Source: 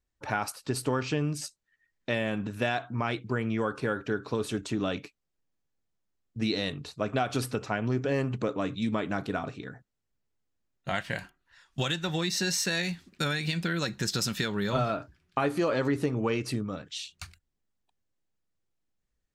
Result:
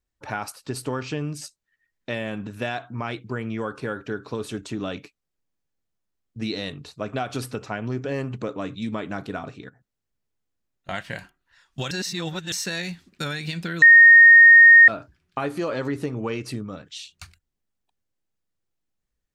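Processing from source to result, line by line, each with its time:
9.69–10.89 s: compression 5:1, threshold -55 dBFS
11.91–12.52 s: reverse
13.82–14.88 s: bleep 1.85 kHz -6.5 dBFS

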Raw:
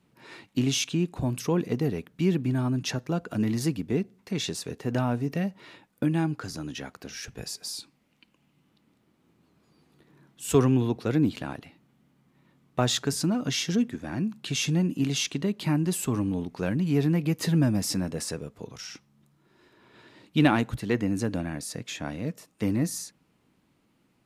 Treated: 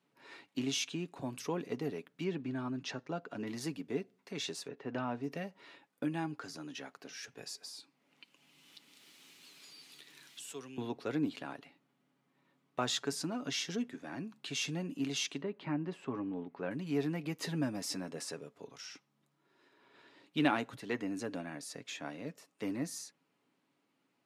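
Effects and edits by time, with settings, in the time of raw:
2.24–3.47 s: distance through air 82 m
4.67–5.22 s: low-pass 2.3 kHz -> 5 kHz
7.63–10.78 s: three bands compressed up and down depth 100%
15.42–16.71 s: low-pass 2.1 kHz
whole clip: Bessel high-pass 330 Hz, order 2; treble shelf 10 kHz -10 dB; comb 7.2 ms, depth 33%; trim -6.5 dB

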